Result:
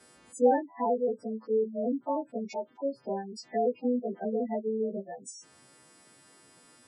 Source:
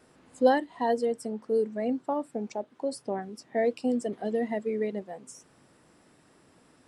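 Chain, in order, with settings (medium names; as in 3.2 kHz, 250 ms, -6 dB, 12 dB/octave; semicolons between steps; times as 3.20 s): partials quantised in pitch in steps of 2 st; low-pass that closes with the level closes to 1.2 kHz, closed at -27 dBFS; spectral gate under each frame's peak -15 dB strong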